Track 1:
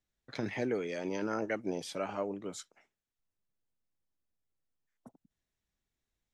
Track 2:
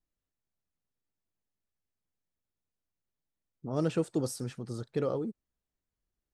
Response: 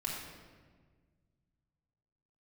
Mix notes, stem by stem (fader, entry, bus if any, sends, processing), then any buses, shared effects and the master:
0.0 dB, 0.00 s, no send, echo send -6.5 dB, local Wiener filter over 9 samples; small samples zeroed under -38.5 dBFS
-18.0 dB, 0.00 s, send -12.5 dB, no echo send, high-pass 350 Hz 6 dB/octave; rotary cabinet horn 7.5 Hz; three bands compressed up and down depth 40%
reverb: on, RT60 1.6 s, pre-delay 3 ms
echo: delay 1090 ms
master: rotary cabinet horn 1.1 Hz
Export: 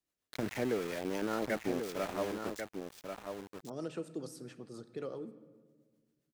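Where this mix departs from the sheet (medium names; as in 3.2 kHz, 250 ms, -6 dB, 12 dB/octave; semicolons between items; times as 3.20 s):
stem 2 -18.0 dB -> -7.0 dB; master: missing rotary cabinet horn 1.1 Hz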